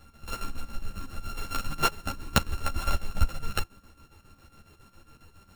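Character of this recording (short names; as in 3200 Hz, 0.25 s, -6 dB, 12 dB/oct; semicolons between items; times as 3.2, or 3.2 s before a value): a buzz of ramps at a fixed pitch in blocks of 32 samples; chopped level 7.3 Hz, depth 65%, duty 65%; a shimmering, thickened sound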